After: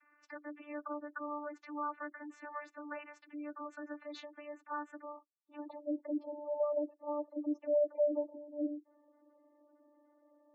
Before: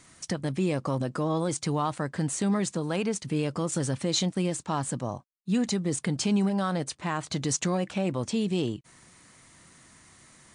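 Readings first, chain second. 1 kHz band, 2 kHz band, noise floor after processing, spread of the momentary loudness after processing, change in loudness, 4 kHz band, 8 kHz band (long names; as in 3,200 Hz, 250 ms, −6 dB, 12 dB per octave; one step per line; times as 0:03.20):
−9.5 dB, −10.0 dB, −72 dBFS, 16 LU, −10.5 dB, −26.5 dB, below −35 dB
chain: channel vocoder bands 32, saw 295 Hz
band-pass filter sweep 1,500 Hz → 570 Hz, 0:05.15–0:05.94
gate on every frequency bin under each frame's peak −20 dB strong
level +1 dB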